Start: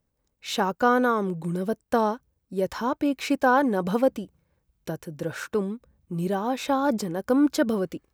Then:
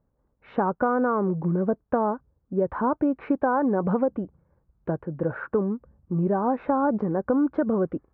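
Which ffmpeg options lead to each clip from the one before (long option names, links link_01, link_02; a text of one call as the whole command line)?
ffmpeg -i in.wav -filter_complex "[0:a]lowpass=frequency=1400:width=0.5412,lowpass=frequency=1400:width=1.3066,asplit=2[link_01][link_02];[link_02]alimiter=limit=-16.5dB:level=0:latency=1,volume=-2dB[link_03];[link_01][link_03]amix=inputs=2:normalize=0,acompressor=threshold=-19dB:ratio=6" out.wav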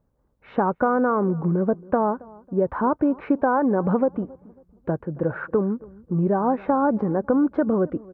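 ffmpeg -i in.wav -filter_complex "[0:a]asplit=2[link_01][link_02];[link_02]adelay=274,lowpass=frequency=1200:poles=1,volume=-22dB,asplit=2[link_03][link_04];[link_04]adelay=274,lowpass=frequency=1200:poles=1,volume=0.36,asplit=2[link_05][link_06];[link_06]adelay=274,lowpass=frequency=1200:poles=1,volume=0.36[link_07];[link_01][link_03][link_05][link_07]amix=inputs=4:normalize=0,volume=2.5dB" out.wav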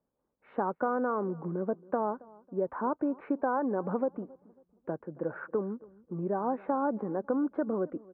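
ffmpeg -i in.wav -filter_complex "[0:a]acrossover=split=190 2300:gain=0.158 1 0.2[link_01][link_02][link_03];[link_01][link_02][link_03]amix=inputs=3:normalize=0,volume=-8.5dB" out.wav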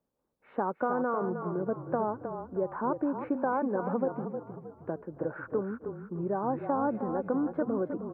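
ffmpeg -i in.wav -filter_complex "[0:a]asplit=6[link_01][link_02][link_03][link_04][link_05][link_06];[link_02]adelay=312,afreqshift=-31,volume=-8dB[link_07];[link_03]adelay=624,afreqshift=-62,volume=-15.5dB[link_08];[link_04]adelay=936,afreqshift=-93,volume=-23.1dB[link_09];[link_05]adelay=1248,afreqshift=-124,volume=-30.6dB[link_10];[link_06]adelay=1560,afreqshift=-155,volume=-38.1dB[link_11];[link_01][link_07][link_08][link_09][link_10][link_11]amix=inputs=6:normalize=0" out.wav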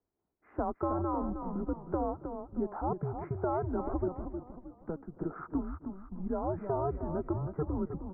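ffmpeg -i in.wav -af "equalizer=frequency=280:width=7.1:gain=-6,highpass=frequency=180:width_type=q:width=0.5412,highpass=frequency=180:width_type=q:width=1.307,lowpass=frequency=2300:width_type=q:width=0.5176,lowpass=frequency=2300:width_type=q:width=0.7071,lowpass=frequency=2300:width_type=q:width=1.932,afreqshift=-160,volume=-2dB" out.wav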